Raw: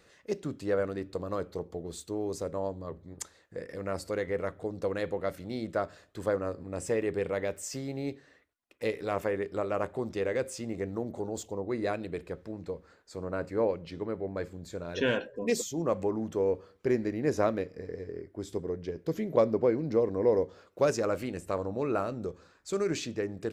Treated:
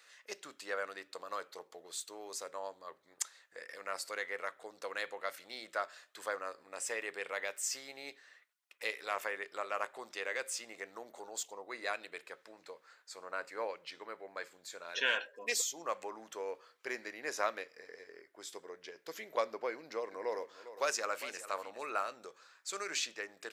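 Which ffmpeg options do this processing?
-filter_complex "[0:a]asettb=1/sr,asplit=3[a][b][c];[a]atrim=end=19.714[d];[b]atrim=start=19.71:end=21.9,asetpts=PTS-STARTPTS,afade=t=in:d=0.004:c=qsin,afade=t=out:st=2.186:d=0.004:c=qsin,aecho=1:1:404:0.211,atrim=end_sample=96579[e];[c]atrim=start=21.896[f];[d][e]acrossfade=d=0.004:c1=hsin:c2=qsin[g];[g][f]acrossfade=d=0.004:c1=qsin:c2=hsin,highpass=1.2k,volume=3dB"

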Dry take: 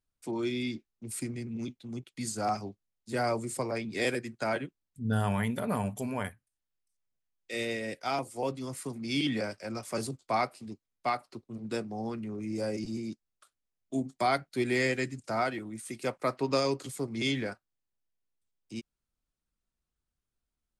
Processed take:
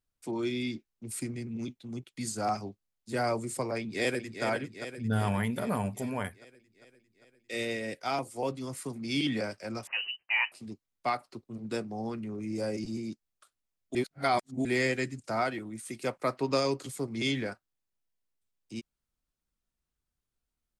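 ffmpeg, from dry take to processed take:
-filter_complex "[0:a]asplit=2[a][b];[b]afade=t=in:st=3.79:d=0.01,afade=t=out:st=4.44:d=0.01,aecho=0:1:400|800|1200|1600|2000|2400|2800|3200|3600:0.398107|0.25877|0.1682|0.10933|0.0710646|0.046192|0.0300248|0.0195161|0.0126855[c];[a][c]amix=inputs=2:normalize=0,asettb=1/sr,asplit=3[d][e][f];[d]atrim=end=9.874[g];[e]atrim=start=9.87:end=10.52,asetpts=PTS-STARTPTS,afade=t=in:d=0.004:c=qsin,afade=t=out:st=0.646:d=0.004:c=qsin,lowpass=f=2.6k:t=q:w=0.5098,lowpass=f=2.6k:t=q:w=0.6013,lowpass=f=2.6k:t=q:w=0.9,lowpass=f=2.6k:t=q:w=2.563,afreqshift=-3100[h];[f]atrim=start=10.516[i];[g][h]acrossfade=d=0.004:c1=hsin:c2=qsin[j];[j][i]acrossfade=d=0.004:c1=qsin:c2=hsin,asplit=3[k][l][m];[k]atrim=end=13.952[n];[l]atrim=start=13.948:end=14.652,asetpts=PTS-STARTPTS,areverse[o];[m]atrim=start=14.648[p];[n][o]acrossfade=d=0.004:c1=hsin:c2=hsin[q];[q][p]acrossfade=d=0.004:c1=hsin:c2=hsin"

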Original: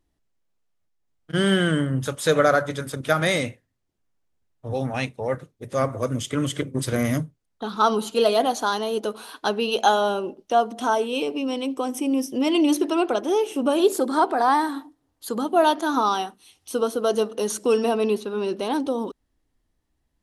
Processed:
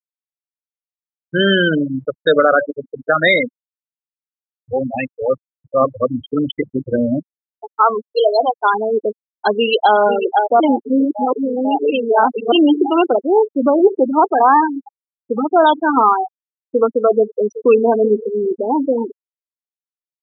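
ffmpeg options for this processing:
-filter_complex "[0:a]asettb=1/sr,asplit=3[a][b][c];[a]atrim=end=1.804[d];[b]atrim=start=1.8:end=4.72,asetpts=PTS-STARTPTS,afade=t=in:d=0.004:c=qsin,afade=t=out:st=2.916:d=0.004:c=qsin,equalizer=f=91:t=o:w=0.64:g=-12[e];[c]atrim=start=4.716[f];[d][e]acrossfade=d=0.004:c1=hsin:c2=qsin[g];[g][f]acrossfade=d=0.004:c1=qsin:c2=hsin,asplit=3[h][i][j];[h]afade=t=out:st=7.19:d=0.02[k];[i]highpass=f=570:p=1,afade=t=in:st=7.19:d=0.02,afade=t=out:st=8.63:d=0.02[l];[j]afade=t=in:st=8.63:d=0.02[m];[k][l][m]amix=inputs=3:normalize=0,asplit=2[n][o];[o]afade=t=in:st=9.55:d=0.01,afade=t=out:st=9.97:d=0.01,aecho=0:1:500|1000|1500|2000|2500|3000|3500|4000|4500|5000|5500|6000:0.530884|0.424708|0.339766|0.271813|0.21745|0.17396|0.139168|0.111335|0.0890676|0.0712541|0.0570033|0.0456026[p];[n][p]amix=inputs=2:normalize=0,asplit=3[q][r][s];[q]afade=t=out:st=13.77:d=0.02[t];[r]lowpass=1.1k,afade=t=in:st=13.77:d=0.02,afade=t=out:st=14.24:d=0.02[u];[s]afade=t=in:st=14.24:d=0.02[v];[t][u][v]amix=inputs=3:normalize=0,asplit=2[w][x];[x]afade=t=in:st=17.15:d=0.01,afade=t=out:st=17.91:d=0.01,aecho=0:1:380|760|1140:0.211349|0.0739721|0.0258902[y];[w][y]amix=inputs=2:normalize=0,asplit=3[z][aa][ab];[z]atrim=end=10.602[ac];[aa]atrim=start=10.598:end=12.522,asetpts=PTS-STARTPTS,areverse[ad];[ab]atrim=start=12.518[ae];[ac][ad]acrossfade=d=0.004:c1=hsin:c2=hsin[af];[af][ae]acrossfade=d=0.004:c1=hsin:c2=hsin,afftfilt=real='re*gte(hypot(re,im),0.178)':imag='im*gte(hypot(re,im),0.178)':win_size=1024:overlap=0.75,equalizer=f=125:t=o:w=1:g=-5,equalizer=f=250:t=o:w=1:g=6,equalizer=f=500:t=o:w=1:g=6,equalizer=f=1k:t=o:w=1:g=6,equalizer=f=2k:t=o:w=1:g=10,equalizer=f=4k:t=o:w=1:g=11,equalizer=f=8k:t=o:w=1:g=-9,alimiter=level_in=2.5dB:limit=-1dB:release=50:level=0:latency=1,volume=-1.5dB"

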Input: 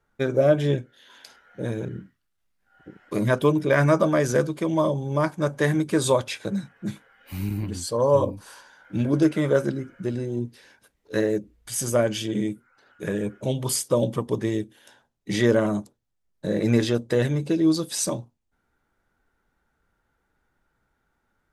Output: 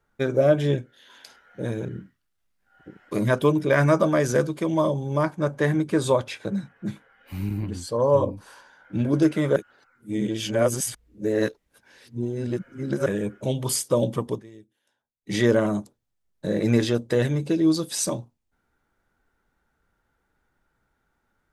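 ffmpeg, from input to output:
-filter_complex "[0:a]asettb=1/sr,asplit=3[a][b][c];[a]atrim=end=5.234[d];[b]atrim=start=5.23:end=9.05,asetpts=PTS-STARTPTS,afade=t=in:d=0.004:c=qsin,afade=t=out:st=3.816:d=0.004:c=qsin,highshelf=f=3.6k:g=-7.5[e];[c]atrim=start=9.046[f];[d][e]acrossfade=d=0.004:c1=hsin:c2=qsin[g];[g][f]acrossfade=d=0.004:c1=qsin:c2=hsin,asplit=5[h][i][j][k][l];[h]atrim=end=9.562[m];[i]atrim=start=9.558:end=13.062,asetpts=PTS-STARTPTS,areverse[n];[j]atrim=start=13.058:end=14.43,asetpts=PTS-STARTPTS,afade=t=out:st=1.232:d=0.14:silence=0.0944061[o];[k]atrim=start=14.43:end=15.21,asetpts=PTS-STARTPTS,volume=-20.5dB[p];[l]atrim=start=15.21,asetpts=PTS-STARTPTS,afade=t=in:d=0.14:silence=0.0944061[q];[m][n]acrossfade=d=0.004:c1=hsin:c2=hsin[r];[o][p][q]concat=n=3:v=0:a=1[s];[r][s]acrossfade=d=0.004:c1=hsin:c2=hsin"

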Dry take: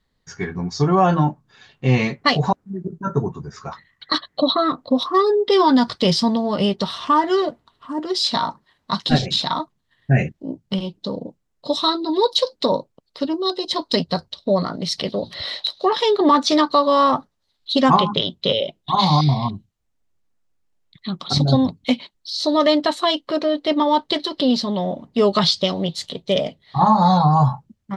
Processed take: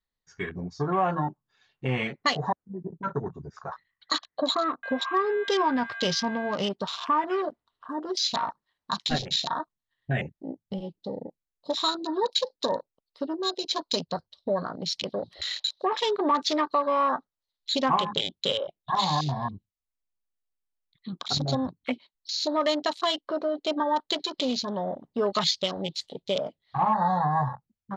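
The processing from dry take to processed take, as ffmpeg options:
-filter_complex "[0:a]asettb=1/sr,asplit=3[a][b][c];[a]atrim=end=4.834[d];[b]atrim=start=4.83:end=6.55,asetpts=PTS-STARTPTS,afade=t=in:d=0.004:c=qsin,afade=t=out:st=1.716:d=0.004:c=qsin,aeval=exprs='val(0)+0.0316*sin(2*PI*1600*n/s)':c=same[e];[c]atrim=start=6.546[f];[d][e]acrossfade=d=0.004:c1=hsin:c2=qsin[g];[g][f]acrossfade=d=0.004:c1=qsin:c2=hsin,equalizer=f=160:t=o:w=2.9:g=-8,acompressor=threshold=-32dB:ratio=1.5,afwtdn=0.02"

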